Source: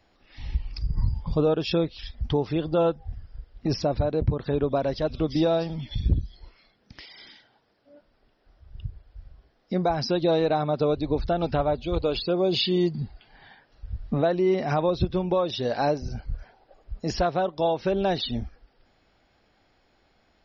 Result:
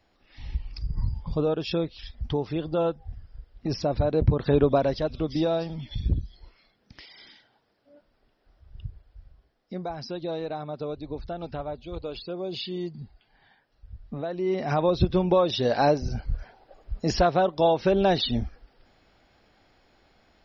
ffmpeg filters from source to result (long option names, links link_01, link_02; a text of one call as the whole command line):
ffmpeg -i in.wav -af "volume=17.5dB,afade=type=in:start_time=3.74:duration=0.85:silence=0.398107,afade=type=out:start_time=4.59:duration=0.52:silence=0.421697,afade=type=out:start_time=8.86:duration=0.97:silence=0.446684,afade=type=in:start_time=14.27:duration=0.83:silence=0.237137" out.wav